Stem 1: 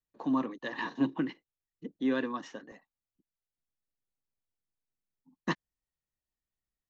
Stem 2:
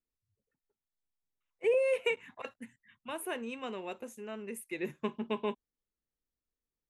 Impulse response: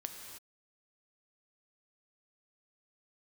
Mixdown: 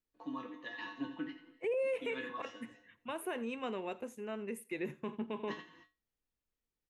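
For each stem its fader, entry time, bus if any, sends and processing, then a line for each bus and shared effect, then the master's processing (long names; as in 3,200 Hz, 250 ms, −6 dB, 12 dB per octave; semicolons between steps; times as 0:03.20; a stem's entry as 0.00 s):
−4.0 dB, 0.00 s, send −3.5 dB, echo send −7.5 dB, parametric band 2,700 Hz +7.5 dB 1.2 octaves; tuned comb filter 100 Hz, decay 0.26 s, harmonics odd, mix 90%
+1.0 dB, 0.00 s, no send, echo send −22.5 dB, high-shelf EQ 4,100 Hz −7.5 dB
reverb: on, pre-delay 3 ms
echo: repeating echo 85 ms, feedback 17%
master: brickwall limiter −28.5 dBFS, peak gain reduction 9.5 dB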